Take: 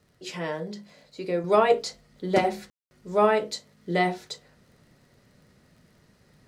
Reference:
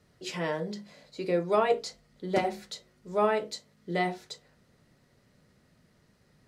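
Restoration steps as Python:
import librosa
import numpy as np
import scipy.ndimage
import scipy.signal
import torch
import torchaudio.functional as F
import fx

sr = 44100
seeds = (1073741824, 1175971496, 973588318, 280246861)

y = fx.fix_declick_ar(x, sr, threshold=6.5)
y = fx.fix_ambience(y, sr, seeds[0], print_start_s=5.85, print_end_s=6.35, start_s=2.7, end_s=2.91)
y = fx.gain(y, sr, db=fx.steps((0.0, 0.0), (1.44, -5.0)))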